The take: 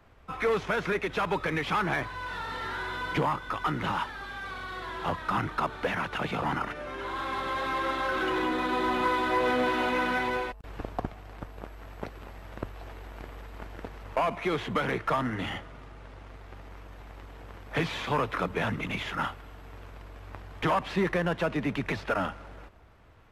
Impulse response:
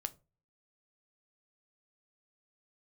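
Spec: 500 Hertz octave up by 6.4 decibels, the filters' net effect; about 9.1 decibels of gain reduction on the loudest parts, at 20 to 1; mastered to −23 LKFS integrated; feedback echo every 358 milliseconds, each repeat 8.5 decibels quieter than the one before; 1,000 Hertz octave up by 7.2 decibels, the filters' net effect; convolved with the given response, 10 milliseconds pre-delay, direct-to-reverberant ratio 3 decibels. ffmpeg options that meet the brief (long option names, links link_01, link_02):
-filter_complex "[0:a]equalizer=frequency=500:width_type=o:gain=6,equalizer=frequency=1000:width_type=o:gain=7,acompressor=threshold=-24dB:ratio=20,aecho=1:1:358|716|1074|1432:0.376|0.143|0.0543|0.0206,asplit=2[link_01][link_02];[1:a]atrim=start_sample=2205,adelay=10[link_03];[link_02][link_03]afir=irnorm=-1:irlink=0,volume=-1.5dB[link_04];[link_01][link_04]amix=inputs=2:normalize=0,volume=4.5dB"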